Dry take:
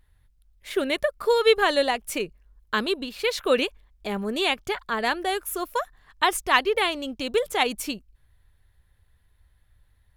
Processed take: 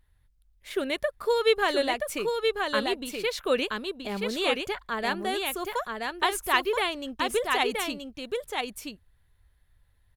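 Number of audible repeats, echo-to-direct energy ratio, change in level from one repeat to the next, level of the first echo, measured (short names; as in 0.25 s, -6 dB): 1, -4.0 dB, no steady repeat, -4.0 dB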